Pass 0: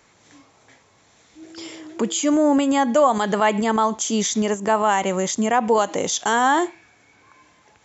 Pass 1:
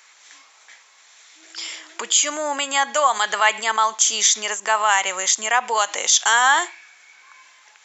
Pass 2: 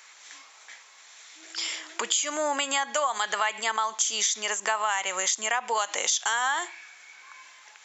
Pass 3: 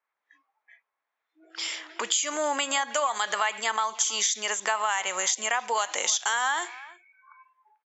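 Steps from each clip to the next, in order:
HPF 1400 Hz 12 dB/oct; gain +8.5 dB
compressor 6:1, threshold -23 dBFS, peak gain reduction 11.5 dB
low-pass opened by the level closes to 980 Hz, open at -25.5 dBFS; speakerphone echo 0.32 s, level -19 dB; spectral noise reduction 24 dB

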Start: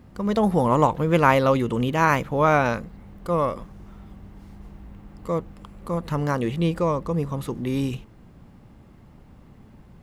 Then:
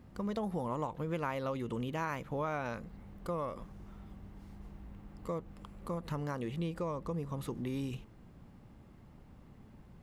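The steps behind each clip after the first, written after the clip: compressor 4:1, threshold -27 dBFS, peak gain reduction 13.5 dB; gain -7 dB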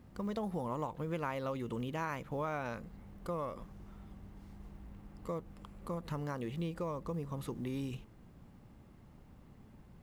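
companded quantiser 8-bit; gain -1.5 dB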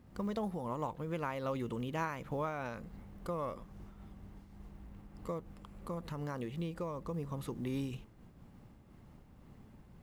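noise-modulated level, depth 60%; gain +2.5 dB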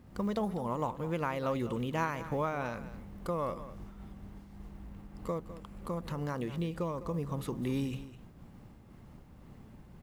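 echo 0.205 s -14 dB; gain +4 dB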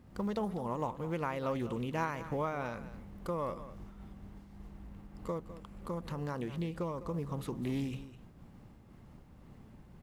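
Doppler distortion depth 0.15 ms; gain -2 dB

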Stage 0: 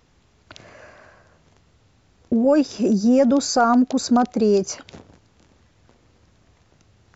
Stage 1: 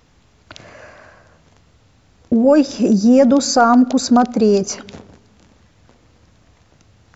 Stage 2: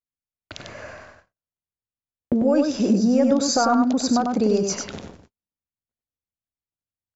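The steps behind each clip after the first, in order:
notch 380 Hz, Q 12; on a send at -22 dB: reverb RT60 1.3 s, pre-delay 3 ms; on the sum: gain +5 dB
gate -42 dBFS, range -51 dB; compressor 2.5:1, threshold -21 dBFS, peak gain reduction 9.5 dB; on a send: echo 97 ms -4.5 dB

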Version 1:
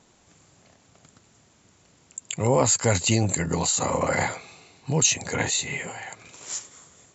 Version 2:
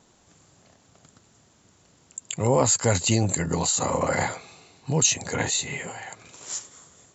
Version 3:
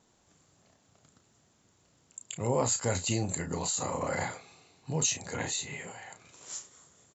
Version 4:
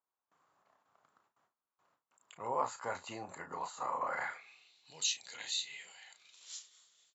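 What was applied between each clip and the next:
bell 2300 Hz -3.5 dB 0.51 oct
doubler 33 ms -8.5 dB; gain -8.5 dB
gate with hold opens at -55 dBFS; band-pass sweep 1100 Hz -> 3700 Hz, 4.09–4.75; ending taper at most 320 dB/s; gain +3 dB

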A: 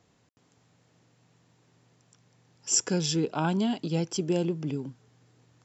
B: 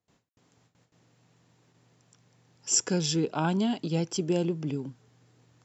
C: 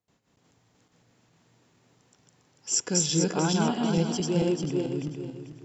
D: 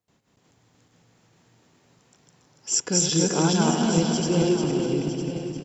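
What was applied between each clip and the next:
gate with hold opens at -55 dBFS
regenerating reverse delay 0.221 s, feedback 52%, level 0 dB; on a send at -16 dB: reverb RT60 2.3 s, pre-delay 45 ms; on the sum: gain -1.5 dB
regenerating reverse delay 0.143 s, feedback 68%, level -7.5 dB; on a send: echo 0.956 s -11.5 dB; on the sum: gain +2.5 dB

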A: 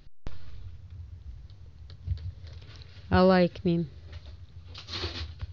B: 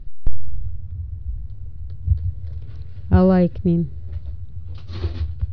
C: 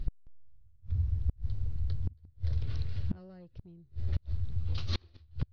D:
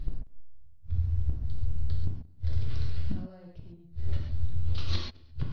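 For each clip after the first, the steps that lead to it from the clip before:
tilt -4 dB/oct; gain -1 dB
high shelf 2300 Hz +10 dB; soft clip -9.5 dBFS, distortion -13 dB; flipped gate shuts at -19 dBFS, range -34 dB
reverb, pre-delay 3 ms, DRR -1 dB

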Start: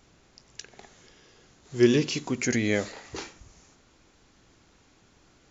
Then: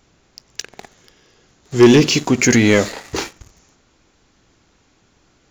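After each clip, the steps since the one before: sample leveller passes 2; gain +6.5 dB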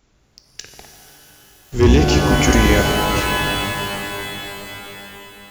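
octaver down 2 oct, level +2 dB; shimmer reverb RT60 3.7 s, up +12 st, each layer -2 dB, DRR 4 dB; gain -5.5 dB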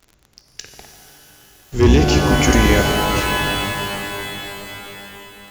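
crackle 40/s -34 dBFS

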